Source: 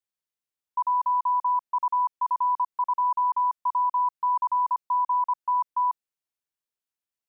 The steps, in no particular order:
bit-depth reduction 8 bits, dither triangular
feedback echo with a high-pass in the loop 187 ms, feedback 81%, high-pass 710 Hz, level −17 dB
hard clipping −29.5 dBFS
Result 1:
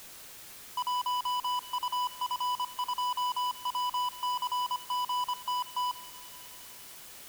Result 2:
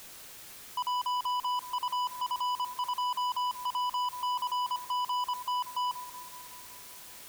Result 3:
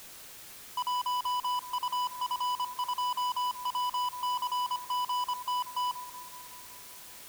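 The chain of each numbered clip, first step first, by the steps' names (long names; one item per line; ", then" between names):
hard clipping, then feedback echo with a high-pass in the loop, then bit-depth reduction
feedback echo with a high-pass in the loop, then bit-depth reduction, then hard clipping
feedback echo with a high-pass in the loop, then hard clipping, then bit-depth reduction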